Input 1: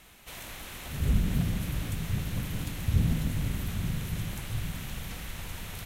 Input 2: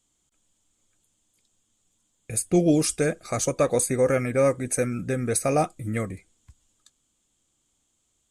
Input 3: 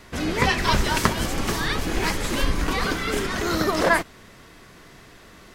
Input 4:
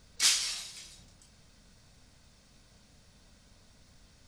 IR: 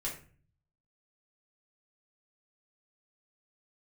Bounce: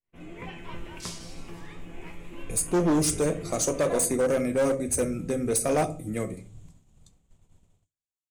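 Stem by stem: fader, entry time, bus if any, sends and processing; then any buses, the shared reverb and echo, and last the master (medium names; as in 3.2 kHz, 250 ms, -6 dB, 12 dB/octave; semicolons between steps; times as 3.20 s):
-16.0 dB, 2.00 s, send -12 dB, low-pass 1 kHz 6 dB/octave
-1.0 dB, 0.20 s, send -5 dB, Bessel high-pass 190 Hz, order 8
-9.5 dB, 0.00 s, send -6.5 dB, resonant high shelf 3.4 kHz -11.5 dB, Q 3; feedback comb 170 Hz, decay 0.52 s, harmonics all, mix 80%
-13.0 dB, 0.80 s, no send, none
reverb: on, RT60 0.40 s, pre-delay 3 ms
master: expander -44 dBFS; peaking EQ 1.7 kHz -11 dB 1.3 oct; overload inside the chain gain 19.5 dB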